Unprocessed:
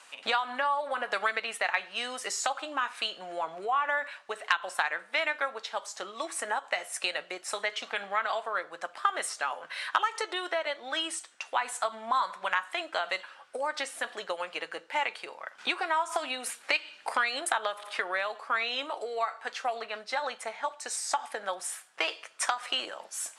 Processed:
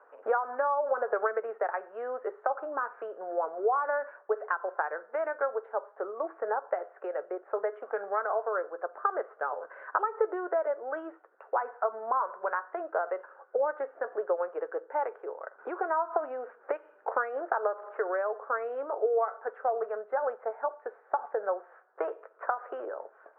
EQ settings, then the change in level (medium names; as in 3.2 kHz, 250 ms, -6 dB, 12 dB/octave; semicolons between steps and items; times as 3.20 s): resonant high-pass 420 Hz, resonance Q 4.2; elliptic low-pass 1.5 kHz, stop band 70 dB; peaking EQ 570 Hz +2.5 dB; -2.5 dB